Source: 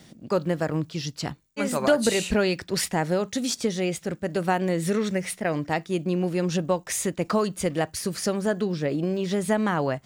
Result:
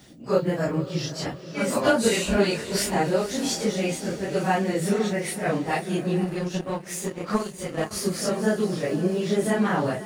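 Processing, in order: phase randomisation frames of 100 ms; echo that smears into a reverb 516 ms, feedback 54%, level -13 dB; 6.24–7.91 s: power-law waveshaper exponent 1.4; trim +1 dB

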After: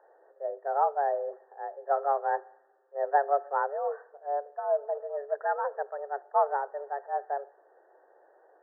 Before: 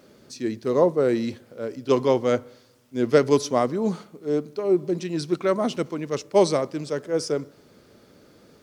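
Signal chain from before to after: frequency shift +280 Hz; brick-wall FIR low-pass 1.9 kHz; trim -7 dB

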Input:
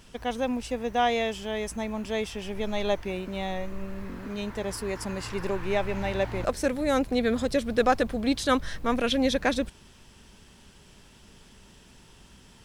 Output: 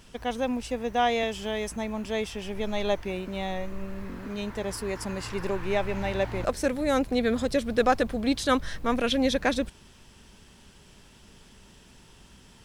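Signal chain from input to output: 1.23–1.76 s: three bands compressed up and down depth 70%

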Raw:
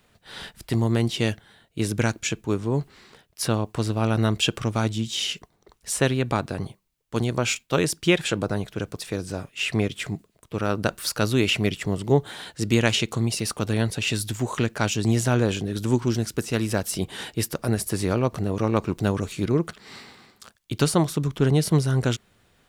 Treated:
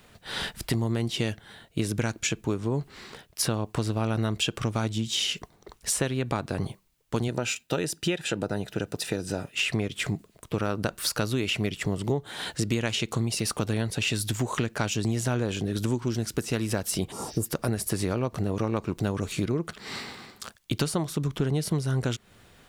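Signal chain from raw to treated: 17.14–17.43 s: spectral replace 1.4–6.3 kHz after; compression 6:1, threshold -31 dBFS, peak gain reduction 16.5 dB; 7.28–9.54 s: comb of notches 1.1 kHz; trim +6.5 dB

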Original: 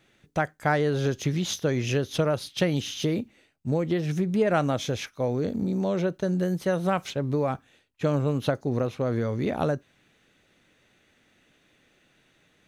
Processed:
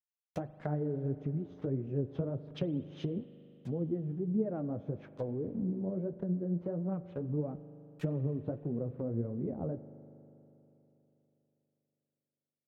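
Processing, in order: send-on-delta sampling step -41.5 dBFS; high-pass 49 Hz; low-pass that closes with the level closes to 400 Hz, closed at -24.5 dBFS; flange 1.6 Hz, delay 3.9 ms, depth 8.1 ms, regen +32%; spring tank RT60 3.4 s, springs 40 ms, chirp 70 ms, DRR 14 dB; trim -3.5 dB

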